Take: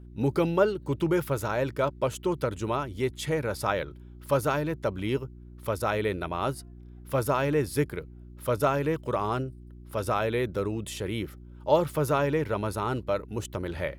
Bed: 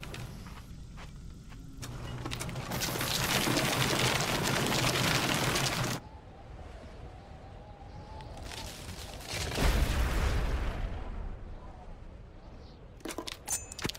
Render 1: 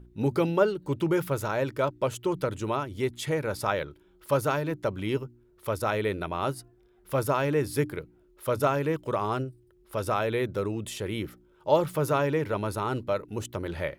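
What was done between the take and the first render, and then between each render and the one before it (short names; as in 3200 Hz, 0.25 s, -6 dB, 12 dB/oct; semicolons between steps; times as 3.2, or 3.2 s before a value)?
de-hum 60 Hz, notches 5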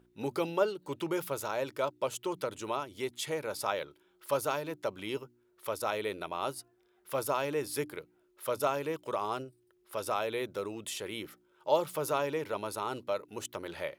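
HPF 780 Hz 6 dB/oct; dynamic EQ 1700 Hz, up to -7 dB, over -47 dBFS, Q 1.5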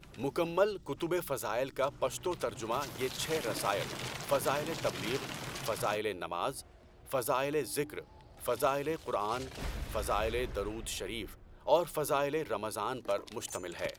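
add bed -11.5 dB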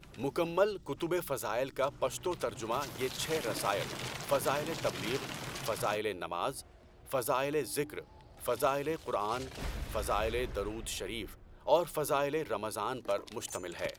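nothing audible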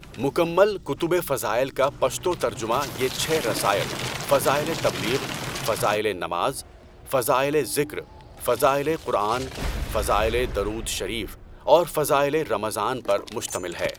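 gain +10.5 dB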